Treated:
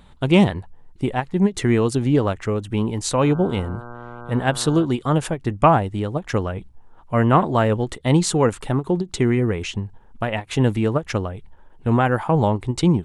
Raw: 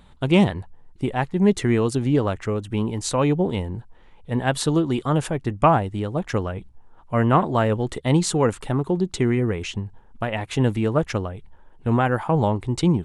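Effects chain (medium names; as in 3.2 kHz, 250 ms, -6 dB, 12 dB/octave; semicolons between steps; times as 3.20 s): 3.21–4.84 s: mains buzz 120 Hz, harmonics 13, -39 dBFS -2 dB/octave; endings held to a fixed fall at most 360 dB/s; trim +2 dB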